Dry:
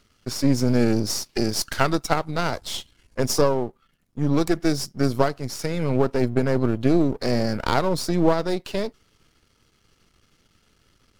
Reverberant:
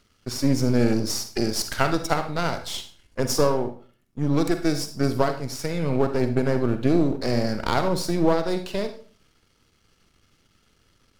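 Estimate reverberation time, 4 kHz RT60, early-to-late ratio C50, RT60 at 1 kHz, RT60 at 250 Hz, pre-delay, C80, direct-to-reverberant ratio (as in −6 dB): 0.45 s, 0.35 s, 10.0 dB, 0.40 s, 0.50 s, 40 ms, 15.0 dB, 8.0 dB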